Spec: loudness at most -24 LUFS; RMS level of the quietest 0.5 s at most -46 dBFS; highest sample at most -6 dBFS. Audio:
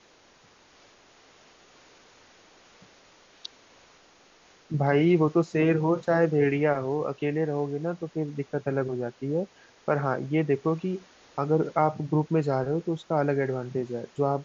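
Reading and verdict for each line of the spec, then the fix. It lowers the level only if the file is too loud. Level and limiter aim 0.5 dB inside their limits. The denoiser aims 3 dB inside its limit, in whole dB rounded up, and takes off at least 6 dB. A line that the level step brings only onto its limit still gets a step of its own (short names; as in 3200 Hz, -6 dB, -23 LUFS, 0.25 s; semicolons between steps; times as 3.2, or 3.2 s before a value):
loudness -27.0 LUFS: OK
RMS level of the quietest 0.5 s -58 dBFS: OK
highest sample -9.5 dBFS: OK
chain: none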